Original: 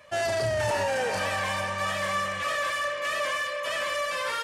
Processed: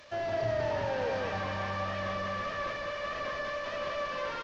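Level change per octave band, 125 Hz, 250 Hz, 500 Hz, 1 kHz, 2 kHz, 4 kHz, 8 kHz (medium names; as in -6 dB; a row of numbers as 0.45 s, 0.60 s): -2.0 dB, 0.0 dB, -3.5 dB, -6.0 dB, -8.5 dB, -10.0 dB, -18.0 dB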